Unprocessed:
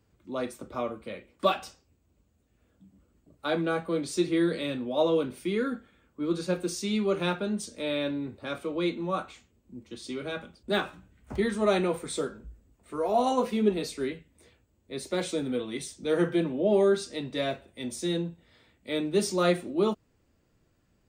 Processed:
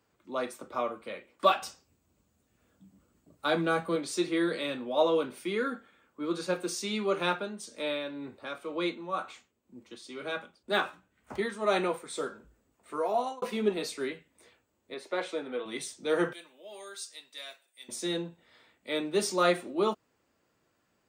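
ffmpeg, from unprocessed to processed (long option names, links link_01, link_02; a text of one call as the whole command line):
ffmpeg -i in.wav -filter_complex "[0:a]asettb=1/sr,asplit=3[link_01][link_02][link_03];[link_01]atrim=end=1.624[link_04];[link_02]atrim=start=1.62:end=3.96,asetpts=PTS-STARTPTS,afade=type=in:duration=0.004:curve=qsin,afade=type=out:start_time=2.336:duration=0.004:curve=qsin,bass=frequency=250:gain=9,treble=frequency=4000:gain=5[link_05];[link_03]atrim=start=3.956[link_06];[link_04][link_05]acrossfade=duration=0.004:curve1=hsin:curve2=qsin[link_07];[link_07][link_06]acrossfade=duration=0.004:curve1=qsin:curve2=hsin,asettb=1/sr,asplit=3[link_08][link_09][link_10];[link_08]atrim=end=7.324[link_11];[link_09]atrim=start=7.32:end=12.27,asetpts=PTS-STARTPTS,afade=type=in:duration=0.004:curve=qsin,afade=type=out:start_time=4.946:duration=0.004:curve=qsin,tremolo=f=2:d=0.5[link_12];[link_10]atrim=start=12.266[link_13];[link_11][link_12]acrossfade=duration=0.004:curve1=hsin:curve2=qsin[link_14];[link_14][link_13]acrossfade=duration=0.004:curve1=qsin:curve2=hsin,asettb=1/sr,asplit=3[link_15][link_16][link_17];[link_15]atrim=end=14.944[link_18];[link_16]atrim=start=14.94:end=15.66,asetpts=PTS-STARTPTS,afade=type=in:duration=0.004:curve=qsin,afade=type=out:start_time=0.716:duration=0.004:curve=qsin,bass=frequency=250:gain=-13,treble=frequency=4000:gain=-14[link_19];[link_17]atrim=start=15.656[link_20];[link_18][link_19]acrossfade=duration=0.004:curve1=hsin:curve2=qsin[link_21];[link_21][link_20]acrossfade=duration=0.004:curve1=qsin:curve2=hsin,asettb=1/sr,asplit=3[link_22][link_23][link_24];[link_22]atrim=end=16.334[link_25];[link_23]atrim=start=16.33:end=17.89,asetpts=PTS-STARTPTS,afade=type=in:duration=0.004:curve=qsin,afade=type=out:start_time=1.556:duration=0.004:curve=qsin,aderivative[link_26];[link_24]atrim=start=17.886[link_27];[link_25][link_26]acrossfade=duration=0.004:curve1=hsin:curve2=qsin[link_28];[link_28][link_27]acrossfade=duration=0.004:curve1=qsin:curve2=hsin,asplit=2[link_29][link_30];[link_29]atrim=end=13.42,asetpts=PTS-STARTPTS,afade=type=out:start_time=12.99:duration=0.43[link_31];[link_30]atrim=start=13.42,asetpts=PTS-STARTPTS,afade=type=in:duration=0.004:curve=hsin[link_32];[link_31][link_32]concat=n=2:v=0:a=1,highpass=frequency=410:poles=1,equalizer=frequency=1100:width_type=o:width=1.5:gain=4" out.wav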